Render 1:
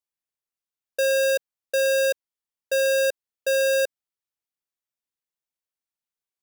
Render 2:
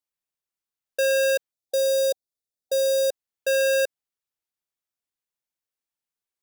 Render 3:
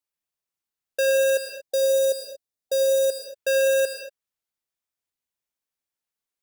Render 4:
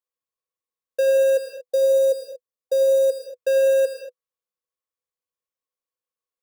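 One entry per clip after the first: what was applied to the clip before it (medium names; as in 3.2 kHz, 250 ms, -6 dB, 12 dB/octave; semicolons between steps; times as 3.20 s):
time-frequency box 1.52–3.11 s, 770–3400 Hz -15 dB
reverberation, pre-delay 68 ms, DRR 5.5 dB
small resonant body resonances 500/1100 Hz, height 17 dB, ringing for 55 ms; trim -7.5 dB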